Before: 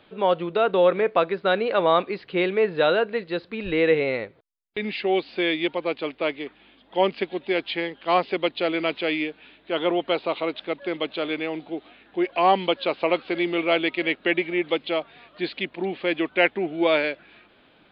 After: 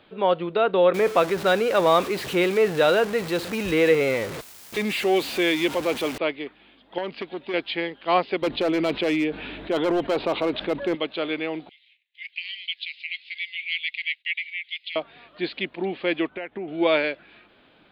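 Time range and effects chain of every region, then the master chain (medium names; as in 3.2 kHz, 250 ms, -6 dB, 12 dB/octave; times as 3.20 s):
0.94–6.18 s: jump at every zero crossing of -28 dBFS + high-pass 48 Hz
6.98–7.54 s: compression 3:1, threshold -25 dBFS + transformer saturation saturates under 990 Hz
8.42–10.95 s: tilt EQ -2 dB/octave + hard clipper -18.5 dBFS + level flattener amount 50%
11.69–14.96 s: gate -50 dBFS, range -20 dB + Chebyshev high-pass 2 kHz, order 6
16.27–16.68 s: compression 8:1, threshold -27 dBFS + distance through air 310 m
whole clip: none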